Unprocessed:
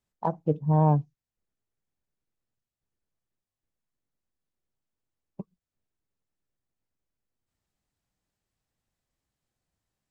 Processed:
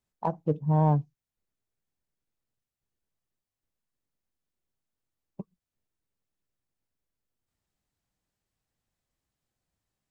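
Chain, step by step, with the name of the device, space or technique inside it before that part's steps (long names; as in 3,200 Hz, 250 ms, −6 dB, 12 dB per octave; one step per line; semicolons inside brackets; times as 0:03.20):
parallel distortion (in parallel at −13 dB: hard clipping −22.5 dBFS, distortion −7 dB)
on the sum: level −2.5 dB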